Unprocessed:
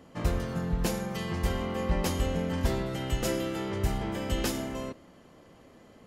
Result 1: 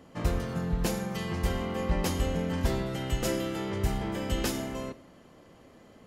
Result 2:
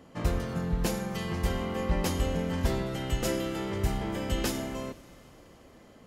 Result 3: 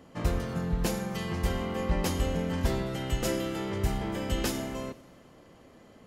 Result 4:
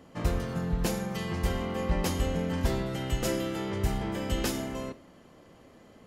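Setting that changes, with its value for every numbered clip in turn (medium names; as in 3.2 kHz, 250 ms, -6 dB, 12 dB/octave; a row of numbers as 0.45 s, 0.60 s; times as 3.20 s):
Schroeder reverb, RT60: 0.72 s, 4.3 s, 1.7 s, 0.33 s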